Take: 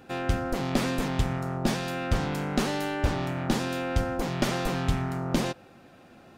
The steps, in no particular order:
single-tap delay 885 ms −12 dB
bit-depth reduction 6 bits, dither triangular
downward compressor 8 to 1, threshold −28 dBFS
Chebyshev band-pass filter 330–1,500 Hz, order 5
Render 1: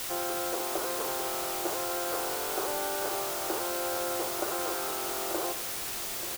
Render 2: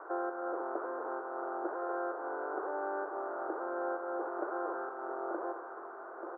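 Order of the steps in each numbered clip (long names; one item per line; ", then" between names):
Chebyshev band-pass filter, then downward compressor, then bit-depth reduction, then single-tap delay
single-tap delay, then downward compressor, then bit-depth reduction, then Chebyshev band-pass filter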